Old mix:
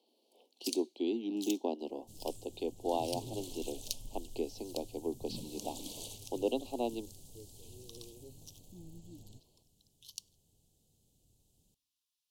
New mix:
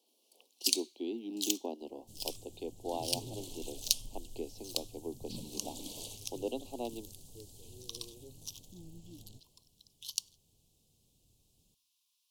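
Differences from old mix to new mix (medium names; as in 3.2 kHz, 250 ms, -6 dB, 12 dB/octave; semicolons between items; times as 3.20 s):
speech -4.5 dB; first sound +10.0 dB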